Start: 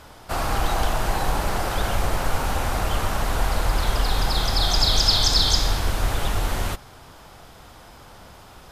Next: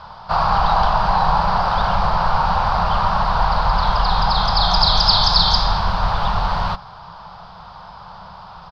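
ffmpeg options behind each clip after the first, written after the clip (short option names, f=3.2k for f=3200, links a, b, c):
-af "firequalizer=gain_entry='entry(120,0);entry(180,9);entry(260,-15);entry(600,2);entry(950,13);entry(2000,-5);entry(4700,5);entry(6900,-24);entry(9800,-29)':delay=0.05:min_phase=1,volume=2dB"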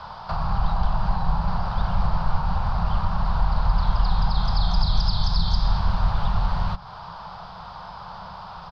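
-filter_complex "[0:a]acrossover=split=210[a][b];[b]acompressor=threshold=-30dB:ratio=6[c];[a][c]amix=inputs=2:normalize=0"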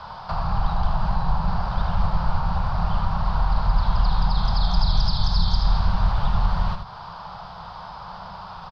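-af "aecho=1:1:78:0.447"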